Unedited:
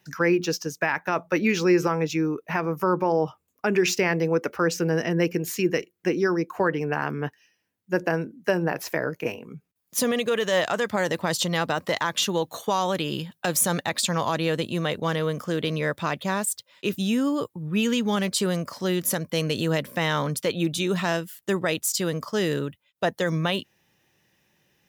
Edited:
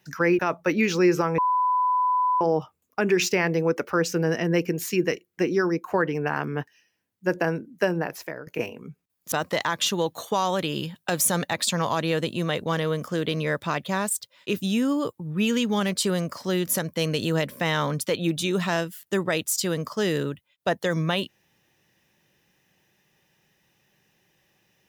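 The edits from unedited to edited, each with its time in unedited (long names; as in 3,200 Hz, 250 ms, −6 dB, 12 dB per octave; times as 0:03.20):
0:00.39–0:01.05: remove
0:02.04–0:03.07: beep over 1,000 Hz −19 dBFS
0:08.51–0:09.13: fade out linear, to −15 dB
0:09.98–0:11.68: remove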